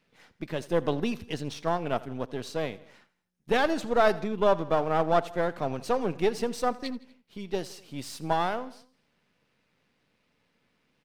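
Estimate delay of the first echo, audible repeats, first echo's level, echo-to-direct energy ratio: 82 ms, 3, -20.0 dB, -18.5 dB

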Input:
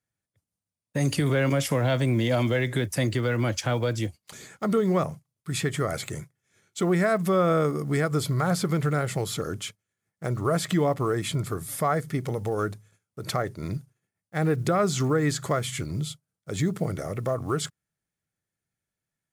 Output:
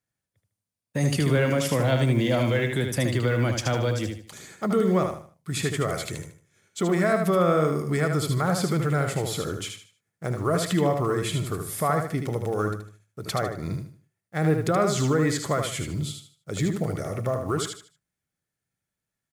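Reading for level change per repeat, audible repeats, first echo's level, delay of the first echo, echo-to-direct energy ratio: -10.0 dB, 3, -5.5 dB, 76 ms, -5.0 dB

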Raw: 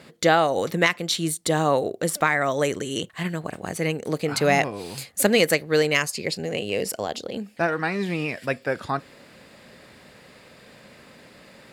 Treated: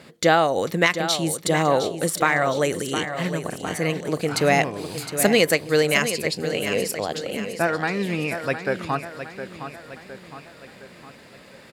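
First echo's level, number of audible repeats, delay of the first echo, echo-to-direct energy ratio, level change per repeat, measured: -10.0 dB, 4, 712 ms, -9.0 dB, -6.0 dB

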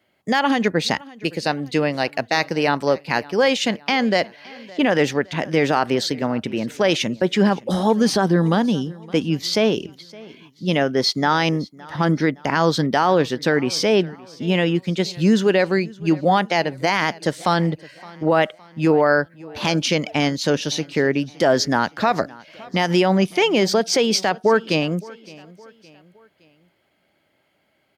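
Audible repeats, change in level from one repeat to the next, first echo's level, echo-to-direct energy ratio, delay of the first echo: 2, -7.0 dB, -22.0 dB, -21.0 dB, 565 ms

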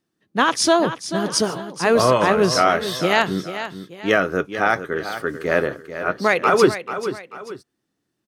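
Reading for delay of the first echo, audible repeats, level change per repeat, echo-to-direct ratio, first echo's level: 439 ms, 2, -8.5 dB, -10.5 dB, -11.0 dB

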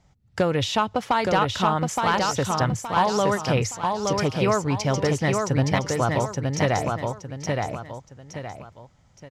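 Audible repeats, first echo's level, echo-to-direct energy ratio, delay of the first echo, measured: 3, -3.5 dB, -3.0 dB, 869 ms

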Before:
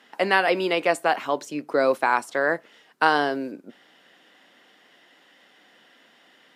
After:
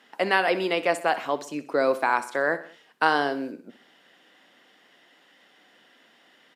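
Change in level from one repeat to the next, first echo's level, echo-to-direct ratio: -5.5 dB, -15.5 dB, -14.0 dB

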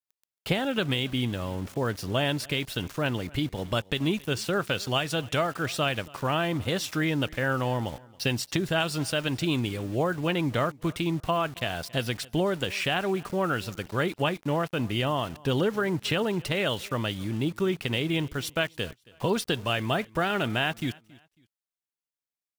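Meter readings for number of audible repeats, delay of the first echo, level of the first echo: 2, 274 ms, -23.5 dB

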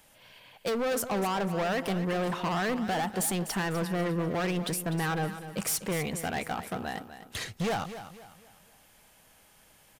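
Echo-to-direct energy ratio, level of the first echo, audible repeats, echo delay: -11.5 dB, -12.0 dB, 3, 249 ms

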